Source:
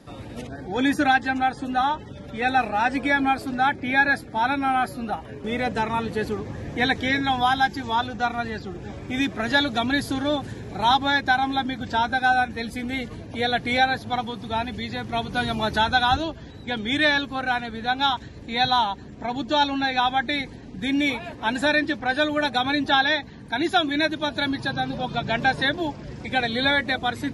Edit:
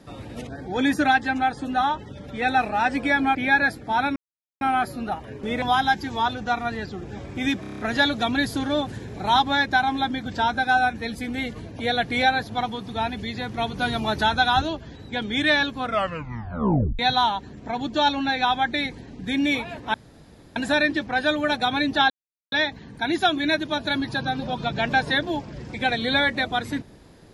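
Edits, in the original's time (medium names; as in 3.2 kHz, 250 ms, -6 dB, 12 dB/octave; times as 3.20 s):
3.35–3.81 s: delete
4.62 s: insert silence 0.45 s
5.63–7.35 s: delete
9.34 s: stutter 0.03 s, 7 plays
17.33 s: tape stop 1.21 s
21.49 s: insert room tone 0.62 s
23.03 s: insert silence 0.42 s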